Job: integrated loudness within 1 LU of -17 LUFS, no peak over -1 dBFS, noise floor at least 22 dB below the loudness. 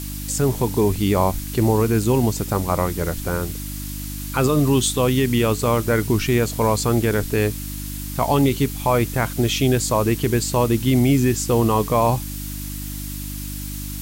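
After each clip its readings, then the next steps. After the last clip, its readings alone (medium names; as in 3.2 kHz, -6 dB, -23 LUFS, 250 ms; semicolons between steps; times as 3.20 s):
hum 50 Hz; highest harmonic 300 Hz; hum level -29 dBFS; noise floor -30 dBFS; noise floor target -43 dBFS; loudness -20.5 LUFS; peak level -6.0 dBFS; loudness target -17.0 LUFS
-> de-hum 50 Hz, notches 6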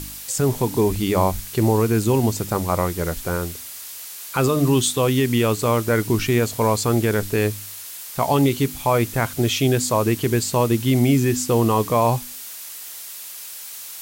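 hum not found; noise floor -36 dBFS; noise floor target -43 dBFS
-> noise reduction 7 dB, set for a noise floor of -36 dBFS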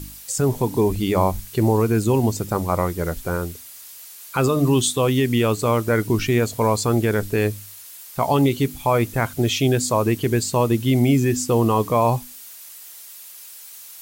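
noise floor -41 dBFS; noise floor target -43 dBFS
-> noise reduction 6 dB, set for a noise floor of -41 dBFS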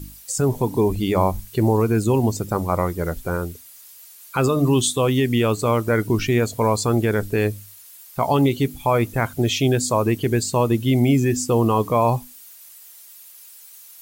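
noise floor -45 dBFS; loudness -20.5 LUFS; peak level -7.0 dBFS; loudness target -17.0 LUFS
-> trim +3.5 dB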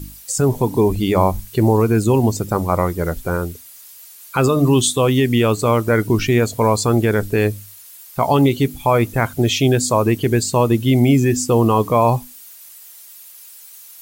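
loudness -17.0 LUFS; peak level -3.5 dBFS; noise floor -41 dBFS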